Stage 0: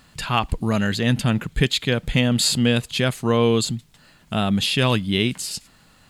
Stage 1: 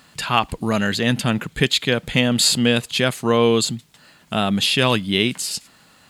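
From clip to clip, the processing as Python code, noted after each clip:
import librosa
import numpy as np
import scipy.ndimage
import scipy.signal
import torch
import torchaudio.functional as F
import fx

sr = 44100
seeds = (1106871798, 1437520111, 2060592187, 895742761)

y = fx.highpass(x, sr, hz=220.0, slope=6)
y = y * 10.0 ** (3.5 / 20.0)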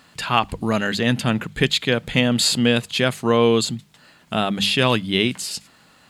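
y = fx.high_shelf(x, sr, hz=5500.0, db=-5.0)
y = fx.hum_notches(y, sr, base_hz=50, count=4)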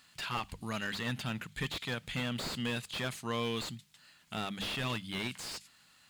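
y = fx.tone_stack(x, sr, knobs='5-5-5')
y = fx.slew_limit(y, sr, full_power_hz=49.0)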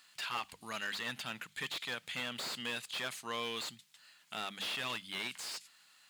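y = fx.highpass(x, sr, hz=790.0, slope=6)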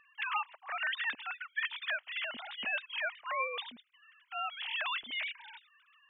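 y = fx.sine_speech(x, sr)
y = y * 10.0 ** (3.0 / 20.0)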